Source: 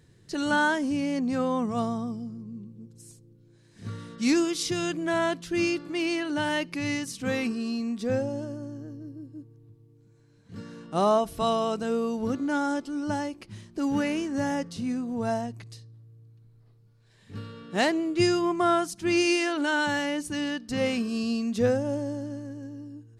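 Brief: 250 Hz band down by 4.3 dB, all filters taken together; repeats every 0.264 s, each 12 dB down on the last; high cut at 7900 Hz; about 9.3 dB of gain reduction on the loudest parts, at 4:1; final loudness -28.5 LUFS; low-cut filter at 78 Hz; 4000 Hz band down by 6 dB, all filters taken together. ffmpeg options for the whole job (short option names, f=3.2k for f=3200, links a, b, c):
-af "highpass=78,lowpass=7.9k,equalizer=f=250:t=o:g=-5.5,equalizer=f=4k:t=o:g=-8.5,acompressor=threshold=-31dB:ratio=4,aecho=1:1:264|528|792:0.251|0.0628|0.0157,volume=7dB"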